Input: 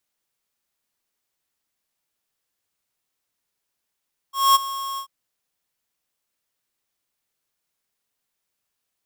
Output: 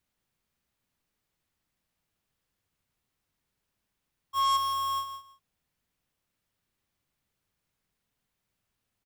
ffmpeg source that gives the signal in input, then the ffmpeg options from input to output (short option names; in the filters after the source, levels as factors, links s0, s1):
-f lavfi -i "aevalsrc='0.224*(2*lt(mod(1090*t,1),0.5)-1)':d=0.738:s=44100,afade=t=in:d=0.222,afade=t=out:st=0.222:d=0.021:silence=0.158,afade=t=out:st=0.65:d=0.088"
-filter_complex "[0:a]bass=f=250:g=12,treble=f=4000:g=-6,asoftclip=type=hard:threshold=0.0631,asplit=2[s0][s1];[s1]aecho=0:1:164|328:0.316|0.0538[s2];[s0][s2]amix=inputs=2:normalize=0"